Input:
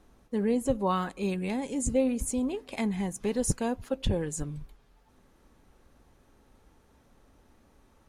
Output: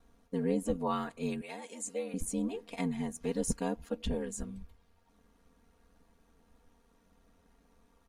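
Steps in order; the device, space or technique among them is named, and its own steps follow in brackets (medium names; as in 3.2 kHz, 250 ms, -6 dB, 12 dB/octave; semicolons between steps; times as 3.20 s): 1.41–2.14 s: high-pass 600 Hz 12 dB/octave; ring-modulated robot voice (ring modulator 44 Hz; comb 4.3 ms, depth 84%); trim -4.5 dB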